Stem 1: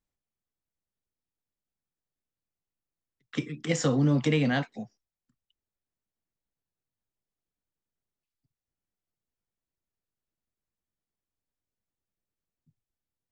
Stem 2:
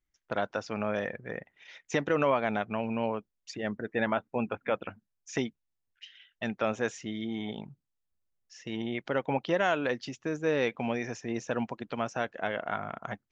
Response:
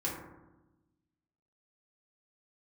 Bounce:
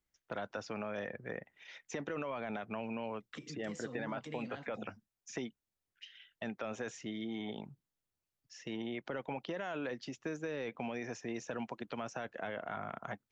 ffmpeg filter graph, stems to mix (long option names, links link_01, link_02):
-filter_complex "[0:a]acompressor=threshold=-30dB:ratio=6,alimiter=level_in=7dB:limit=-24dB:level=0:latency=1:release=301,volume=-7dB,volume=-3dB[link_01];[1:a]highpass=57,alimiter=limit=-22dB:level=0:latency=1:release=12,volume=-2dB[link_02];[link_01][link_02]amix=inputs=2:normalize=0,acrossover=split=220|1600[link_03][link_04][link_05];[link_03]acompressor=threshold=-50dB:ratio=4[link_06];[link_04]acompressor=threshold=-38dB:ratio=4[link_07];[link_05]acompressor=threshold=-48dB:ratio=4[link_08];[link_06][link_07][link_08]amix=inputs=3:normalize=0"